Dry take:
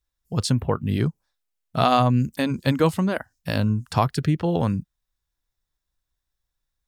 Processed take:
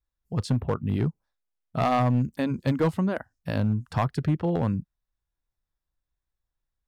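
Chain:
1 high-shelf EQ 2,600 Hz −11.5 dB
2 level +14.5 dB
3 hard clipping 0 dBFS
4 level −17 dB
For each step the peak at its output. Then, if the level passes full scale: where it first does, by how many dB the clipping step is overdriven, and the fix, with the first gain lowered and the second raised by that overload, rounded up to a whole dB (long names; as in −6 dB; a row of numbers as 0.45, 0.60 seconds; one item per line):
−5.5, +9.0, 0.0, −17.0 dBFS
step 2, 9.0 dB
step 2 +5.5 dB, step 4 −8 dB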